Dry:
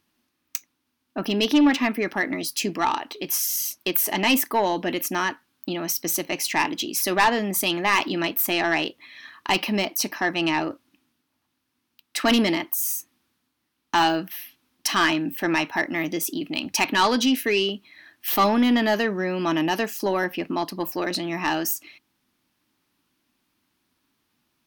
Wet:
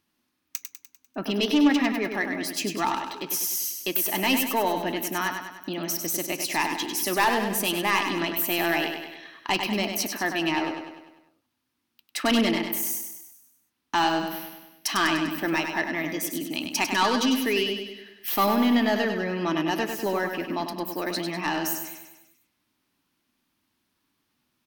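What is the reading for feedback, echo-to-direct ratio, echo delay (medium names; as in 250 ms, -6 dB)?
53%, -5.0 dB, 99 ms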